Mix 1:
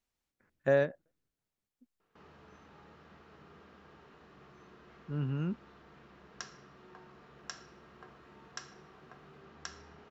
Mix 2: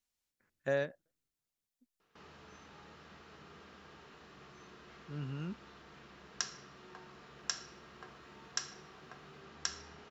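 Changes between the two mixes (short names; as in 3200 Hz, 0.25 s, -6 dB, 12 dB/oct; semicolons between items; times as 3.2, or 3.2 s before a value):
speech -7.0 dB; master: add high shelf 2700 Hz +11.5 dB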